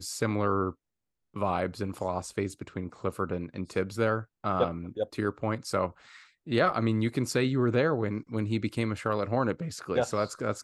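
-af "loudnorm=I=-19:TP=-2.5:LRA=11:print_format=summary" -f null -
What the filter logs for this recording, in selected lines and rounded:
Input Integrated:    -30.1 LUFS
Input True Peak:     -11.8 dBTP
Input LRA:             3.8 LU
Input Threshold:     -40.3 LUFS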